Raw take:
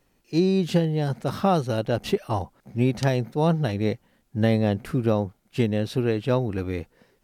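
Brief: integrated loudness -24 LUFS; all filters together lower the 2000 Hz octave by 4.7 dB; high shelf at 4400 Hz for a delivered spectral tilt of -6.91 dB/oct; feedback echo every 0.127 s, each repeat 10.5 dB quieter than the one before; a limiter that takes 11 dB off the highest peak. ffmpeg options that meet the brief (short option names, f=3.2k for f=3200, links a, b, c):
-af "equalizer=f=2k:t=o:g=-7.5,highshelf=f=4.4k:g=5.5,alimiter=limit=-21dB:level=0:latency=1,aecho=1:1:127|254|381:0.299|0.0896|0.0269,volume=6.5dB"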